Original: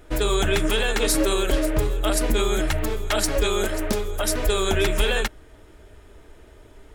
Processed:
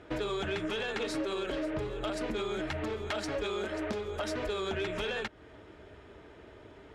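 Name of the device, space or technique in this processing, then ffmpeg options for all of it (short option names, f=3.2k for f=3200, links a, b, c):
AM radio: -af "highpass=100,lowpass=3.8k,acompressor=threshold=-31dB:ratio=4,asoftclip=type=tanh:threshold=-25dB"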